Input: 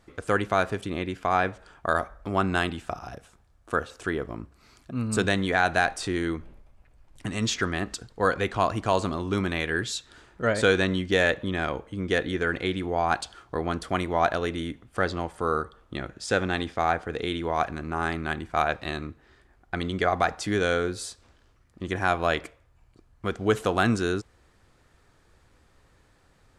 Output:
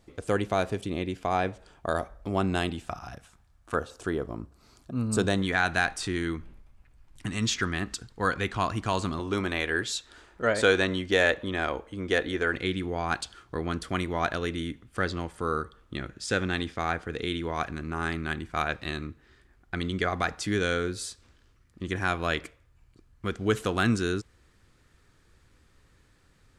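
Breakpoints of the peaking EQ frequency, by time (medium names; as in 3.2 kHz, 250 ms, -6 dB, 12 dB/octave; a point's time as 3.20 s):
peaking EQ -8 dB 1.2 oct
1.4 kHz
from 2.89 s 450 Hz
from 3.74 s 2.1 kHz
from 5.42 s 580 Hz
from 9.19 s 140 Hz
from 12.55 s 720 Hz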